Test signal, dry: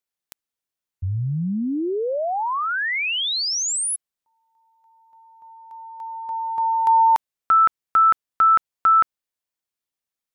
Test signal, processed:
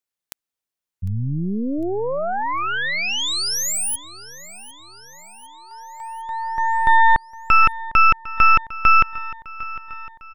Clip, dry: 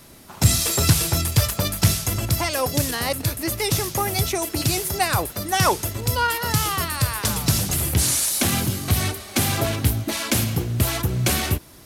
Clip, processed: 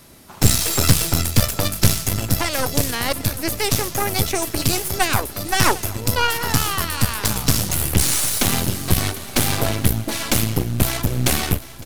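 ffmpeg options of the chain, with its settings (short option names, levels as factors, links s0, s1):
-af "aeval=exprs='0.75*(cos(1*acos(clip(val(0)/0.75,-1,1)))-cos(1*PI/2))+0.188*(cos(6*acos(clip(val(0)/0.75,-1,1)))-cos(6*PI/2))':c=same,aecho=1:1:753|1506|2259|3012|3765:0.126|0.0718|0.0409|0.0233|0.0133"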